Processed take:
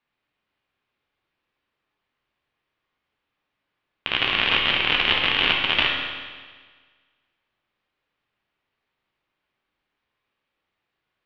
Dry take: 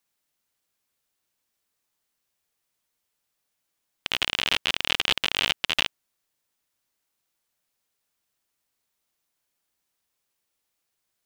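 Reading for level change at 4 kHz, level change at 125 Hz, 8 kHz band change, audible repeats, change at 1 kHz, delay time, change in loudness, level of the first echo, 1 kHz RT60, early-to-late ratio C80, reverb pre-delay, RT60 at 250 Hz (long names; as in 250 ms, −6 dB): +4.0 dB, +7.0 dB, below −15 dB, no echo audible, +7.0 dB, no echo audible, +4.5 dB, no echo audible, 1.5 s, 4.0 dB, 10 ms, 1.5 s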